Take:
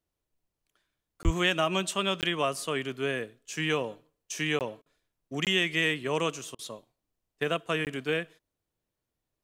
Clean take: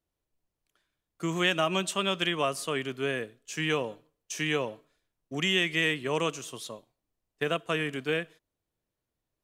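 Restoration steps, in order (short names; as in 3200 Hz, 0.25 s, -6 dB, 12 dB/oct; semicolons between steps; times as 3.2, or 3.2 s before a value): de-plosive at 1.24; interpolate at 1.23/2.21/4.59/5.45/7.85, 18 ms; interpolate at 4.82/6.55, 38 ms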